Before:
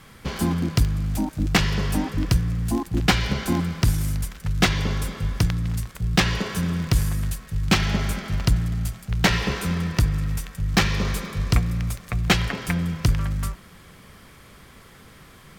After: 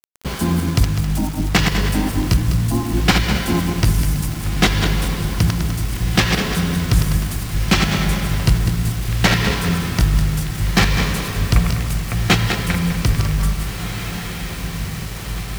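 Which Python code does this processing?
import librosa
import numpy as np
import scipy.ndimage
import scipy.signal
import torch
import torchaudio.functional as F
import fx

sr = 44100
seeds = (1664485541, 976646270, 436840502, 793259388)

y = fx.reverse_delay_fb(x, sr, ms=101, feedback_pct=58, wet_db=-5)
y = fx.echo_diffused(y, sr, ms=1764, feedback_pct=64, wet_db=-10)
y = fx.quant_dither(y, sr, seeds[0], bits=6, dither='none')
y = y * 10.0 ** (3.0 / 20.0)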